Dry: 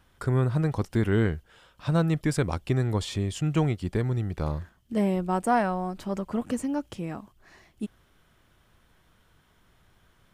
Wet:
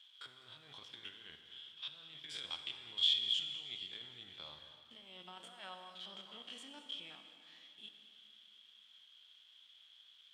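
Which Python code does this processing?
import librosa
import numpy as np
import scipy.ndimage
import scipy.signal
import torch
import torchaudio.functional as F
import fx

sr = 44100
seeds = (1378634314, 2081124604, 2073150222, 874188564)

y = fx.spec_steps(x, sr, hold_ms=50)
y = fx.over_compress(y, sr, threshold_db=-28.0, ratio=-0.5)
y = fx.quant_dither(y, sr, seeds[0], bits=10, dither='none')
y = fx.bandpass_q(y, sr, hz=3300.0, q=18.0)
y = y + 10.0 ** (-16.5 / 20.0) * np.pad(y, (int(204 * sr / 1000.0), 0))[:len(y)]
y = fx.rev_plate(y, sr, seeds[1], rt60_s=2.9, hf_ratio=0.75, predelay_ms=0, drr_db=6.0)
y = y * 10.0 ** (14.0 / 20.0)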